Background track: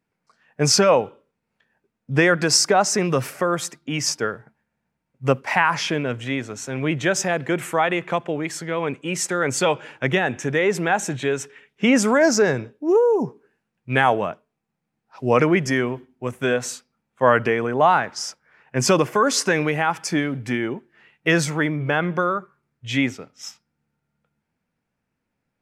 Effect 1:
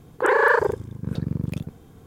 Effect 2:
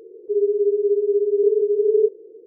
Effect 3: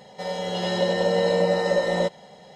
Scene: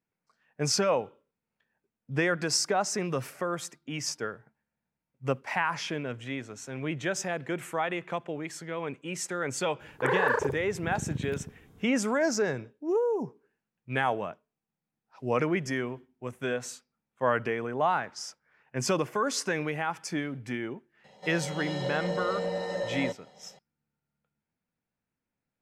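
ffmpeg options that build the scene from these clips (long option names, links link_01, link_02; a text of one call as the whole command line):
ffmpeg -i bed.wav -i cue0.wav -i cue1.wav -i cue2.wav -filter_complex "[0:a]volume=-10dB[link_01];[3:a]asoftclip=type=tanh:threshold=-13dB[link_02];[1:a]atrim=end=2.06,asetpts=PTS-STARTPTS,volume=-8.5dB,afade=type=in:duration=0.004:curve=hsin,afade=type=out:start_time=2.056:duration=0.004:curve=hsin,adelay=9800[link_03];[link_02]atrim=end=2.55,asetpts=PTS-STARTPTS,volume=-9.5dB,afade=type=in:duration=0.004:curve=hsin,afade=type=out:start_time=2.546:duration=0.004:curve=hsin,adelay=21040[link_04];[link_01][link_03][link_04]amix=inputs=3:normalize=0" out.wav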